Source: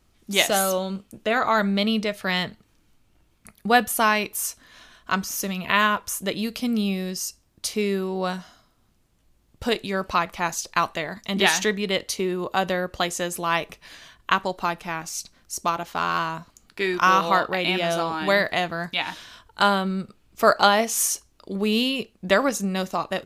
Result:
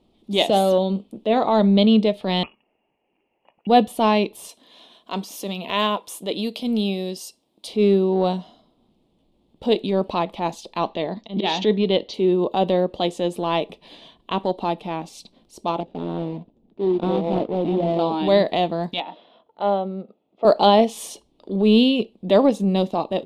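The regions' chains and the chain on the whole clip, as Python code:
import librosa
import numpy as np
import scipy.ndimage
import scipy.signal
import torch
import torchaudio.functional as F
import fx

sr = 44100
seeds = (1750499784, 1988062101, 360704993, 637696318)

y = fx.chain(x, sr, fx.highpass(hz=500.0, slope=12),
    fx.freq_invert(carrier_hz=3100), at=(2.43, 3.67))
y = fx.chain(y, sr, fx.highpass(hz=430.0, slope=6),
    fx.high_shelf(hz=6600.0, db=9.0), at=(4.49, 7.67))
y = fx.chain(y, sr, fx.auto_swell(attack_ms=106.0),
    fx.steep_lowpass(hz=6300.0, slope=36), at=(10.78, 12.14))
y = fx.chain(y, sr, fx.median_filter(points=41),
    fx.air_absorb(metres=70.0), at=(15.8, 17.99))
y = fx.chain(y, sr, fx.highpass(hz=340.0, slope=12),
    fx.spacing_loss(db_at_10k=41),
    fx.comb(ms=1.5, depth=0.37), at=(19.0, 20.45))
y = fx.curve_eq(y, sr, hz=(100.0, 210.0, 430.0, 910.0, 1500.0, 3500.0, 6200.0, 9000.0, 13000.0), db=(0, 14, 14, 10, -10, 11, -8, -2, -7))
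y = fx.transient(y, sr, attack_db=-6, sustain_db=-1)
y = fx.high_shelf(y, sr, hz=7700.0, db=-5.5)
y = F.gain(torch.from_numpy(y), -5.0).numpy()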